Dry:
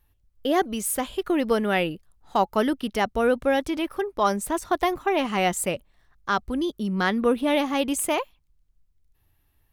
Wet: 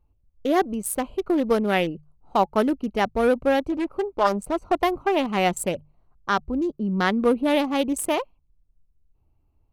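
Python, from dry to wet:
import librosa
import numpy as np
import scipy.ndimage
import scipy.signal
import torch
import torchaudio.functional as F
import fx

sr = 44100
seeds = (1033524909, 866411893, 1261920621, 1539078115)

y = fx.wiener(x, sr, points=25)
y = fx.hum_notches(y, sr, base_hz=50, count=3)
y = fx.doppler_dist(y, sr, depth_ms=0.35, at=(3.72, 4.82))
y = F.gain(torch.from_numpy(y), 2.0).numpy()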